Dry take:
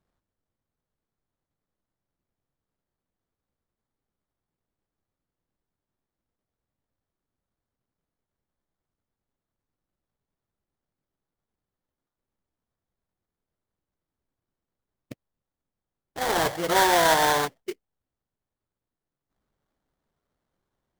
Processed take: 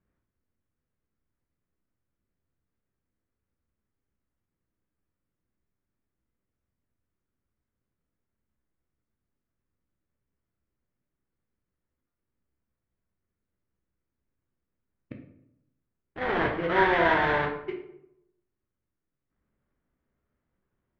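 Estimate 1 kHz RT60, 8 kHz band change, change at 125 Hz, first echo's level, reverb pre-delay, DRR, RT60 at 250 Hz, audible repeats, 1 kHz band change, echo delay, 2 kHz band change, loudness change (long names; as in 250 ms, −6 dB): 0.75 s, below −30 dB, +1.5 dB, no echo audible, 10 ms, 2.5 dB, 0.95 s, no echo audible, −4.0 dB, no echo audible, +0.5 dB, −3.0 dB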